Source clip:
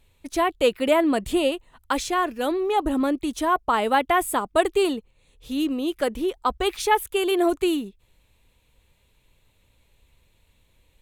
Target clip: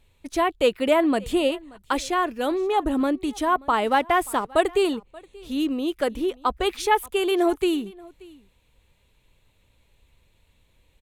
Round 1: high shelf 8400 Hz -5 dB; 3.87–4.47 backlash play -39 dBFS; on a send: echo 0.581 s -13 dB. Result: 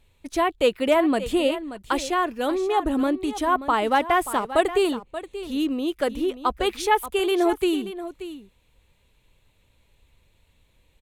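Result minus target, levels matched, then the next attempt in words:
echo-to-direct +10.5 dB
high shelf 8400 Hz -5 dB; 3.87–4.47 backlash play -39 dBFS; on a send: echo 0.581 s -23.5 dB

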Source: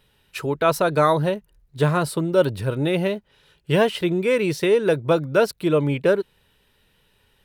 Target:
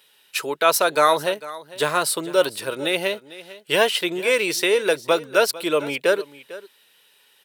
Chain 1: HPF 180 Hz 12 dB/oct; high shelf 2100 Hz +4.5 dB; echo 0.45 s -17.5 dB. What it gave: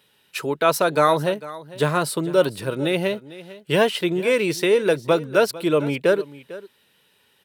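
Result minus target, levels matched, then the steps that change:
250 Hz band +5.5 dB; 4000 Hz band -4.5 dB
change: HPF 400 Hz 12 dB/oct; change: high shelf 2100 Hz +11 dB

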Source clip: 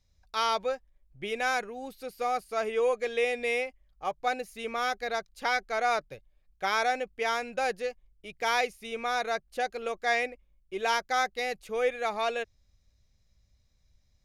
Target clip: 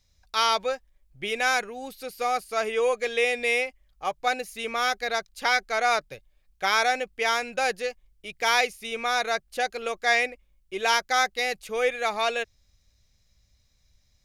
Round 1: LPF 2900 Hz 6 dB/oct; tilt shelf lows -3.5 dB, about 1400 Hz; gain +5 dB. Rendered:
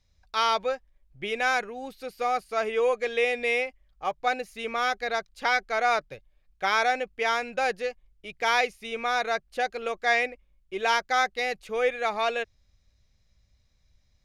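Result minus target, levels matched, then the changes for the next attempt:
4000 Hz band -3.0 dB
remove: LPF 2900 Hz 6 dB/oct

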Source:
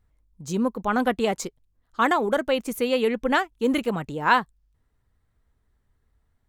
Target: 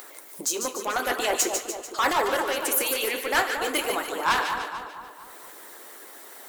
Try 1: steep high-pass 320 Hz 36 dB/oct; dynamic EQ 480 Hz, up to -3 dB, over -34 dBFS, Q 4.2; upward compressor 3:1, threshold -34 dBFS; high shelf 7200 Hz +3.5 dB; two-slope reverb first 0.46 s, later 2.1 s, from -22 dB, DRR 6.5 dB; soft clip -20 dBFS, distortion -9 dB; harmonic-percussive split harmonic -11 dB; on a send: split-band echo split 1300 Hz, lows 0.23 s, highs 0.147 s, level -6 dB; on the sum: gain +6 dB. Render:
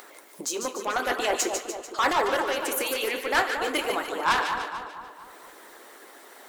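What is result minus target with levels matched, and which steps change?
8000 Hz band -3.0 dB
change: high shelf 7200 Hz +14.5 dB

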